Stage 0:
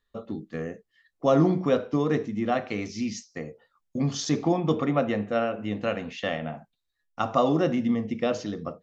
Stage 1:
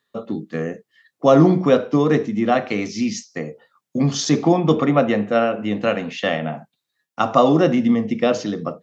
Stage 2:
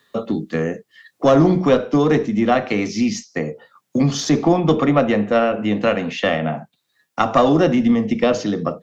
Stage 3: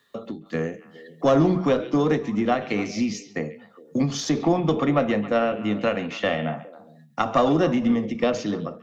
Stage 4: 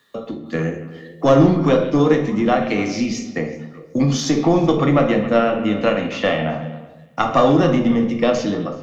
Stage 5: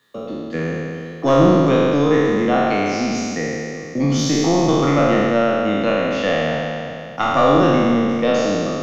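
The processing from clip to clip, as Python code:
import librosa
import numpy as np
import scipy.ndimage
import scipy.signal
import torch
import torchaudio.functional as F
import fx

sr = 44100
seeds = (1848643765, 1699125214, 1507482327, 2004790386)

y1 = scipy.signal.sosfilt(scipy.signal.butter(4, 120.0, 'highpass', fs=sr, output='sos'), x)
y1 = y1 * 10.0 ** (8.0 / 20.0)
y2 = fx.diode_clip(y1, sr, knee_db=-5.5)
y2 = fx.band_squash(y2, sr, depth_pct=40)
y2 = y2 * 10.0 ** (2.0 / 20.0)
y3 = fx.echo_stepped(y2, sr, ms=137, hz=2800.0, octaves=-1.4, feedback_pct=70, wet_db=-11.0)
y3 = fx.end_taper(y3, sr, db_per_s=140.0)
y3 = y3 * 10.0 ** (-5.0 / 20.0)
y4 = fx.echo_feedback(y3, sr, ms=377, feedback_pct=16, wet_db=-22.5)
y4 = fx.room_shoebox(y4, sr, seeds[0], volume_m3=150.0, walls='mixed', distance_m=0.56)
y4 = y4 * 10.0 ** (4.0 / 20.0)
y5 = fx.spec_trails(y4, sr, decay_s=2.65)
y5 = y5 * 10.0 ** (-4.0 / 20.0)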